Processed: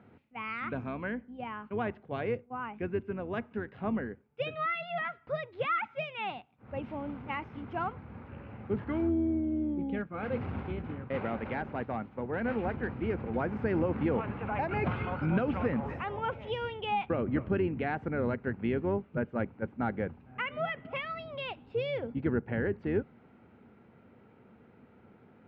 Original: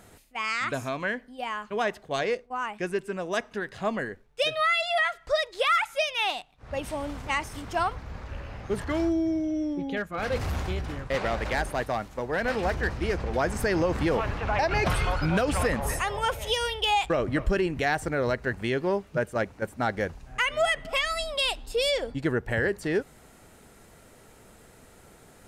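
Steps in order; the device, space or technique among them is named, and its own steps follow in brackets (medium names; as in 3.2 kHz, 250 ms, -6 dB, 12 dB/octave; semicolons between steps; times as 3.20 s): sub-octave bass pedal (octave divider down 2 oct, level -2 dB; cabinet simulation 88–2300 Hz, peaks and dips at 230 Hz +7 dB, 640 Hz -6 dB, 1.1 kHz -4 dB, 1.8 kHz -8 dB); trim -4 dB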